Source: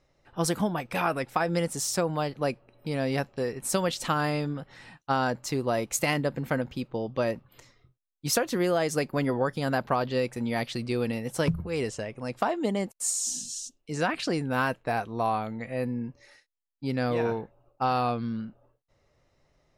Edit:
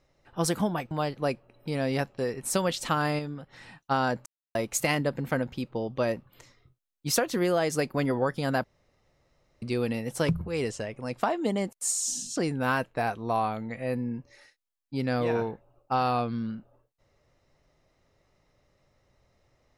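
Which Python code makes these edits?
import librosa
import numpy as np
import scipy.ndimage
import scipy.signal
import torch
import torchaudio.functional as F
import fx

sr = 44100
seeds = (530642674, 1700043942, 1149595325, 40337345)

y = fx.edit(x, sr, fx.cut(start_s=0.91, length_s=1.19),
    fx.clip_gain(start_s=4.38, length_s=0.34, db=-5.0),
    fx.silence(start_s=5.45, length_s=0.29),
    fx.room_tone_fill(start_s=9.83, length_s=0.98),
    fx.cut(start_s=13.55, length_s=0.71), tone=tone)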